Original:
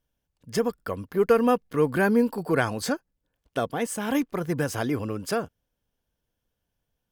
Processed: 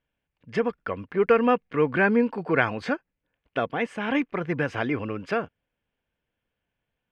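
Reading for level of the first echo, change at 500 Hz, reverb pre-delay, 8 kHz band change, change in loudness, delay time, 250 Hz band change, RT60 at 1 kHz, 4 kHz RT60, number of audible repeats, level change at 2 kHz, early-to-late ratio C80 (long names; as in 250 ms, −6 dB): no echo audible, 0.0 dB, no reverb audible, below −15 dB, +0.5 dB, no echo audible, −0.5 dB, no reverb audible, no reverb audible, no echo audible, +4.5 dB, no reverb audible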